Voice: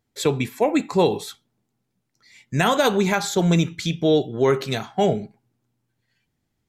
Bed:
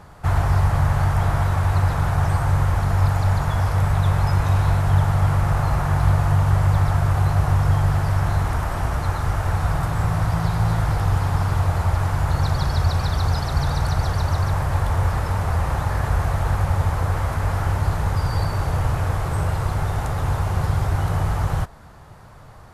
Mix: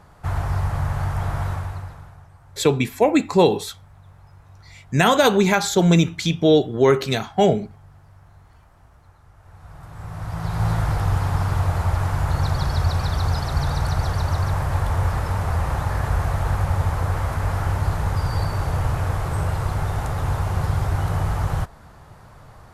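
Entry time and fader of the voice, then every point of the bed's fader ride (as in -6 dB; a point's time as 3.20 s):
2.40 s, +3.0 dB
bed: 1.51 s -5 dB
2.30 s -29 dB
9.33 s -29 dB
10.65 s -1 dB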